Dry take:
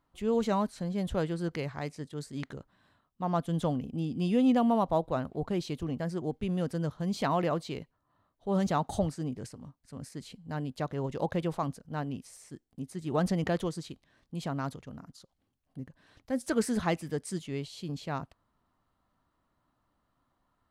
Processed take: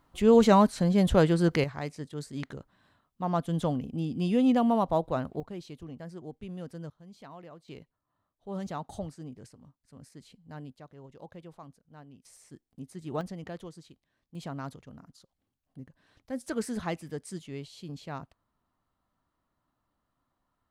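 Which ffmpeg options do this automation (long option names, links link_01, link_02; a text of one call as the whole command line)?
ffmpeg -i in.wav -af "asetnsamples=nb_out_samples=441:pad=0,asendcmd='1.64 volume volume 1dB;5.4 volume volume -9dB;6.9 volume volume -19dB;7.68 volume volume -8dB;10.75 volume volume -16dB;12.25 volume volume -4dB;13.21 volume volume -11dB;14.35 volume volume -4dB',volume=9dB" out.wav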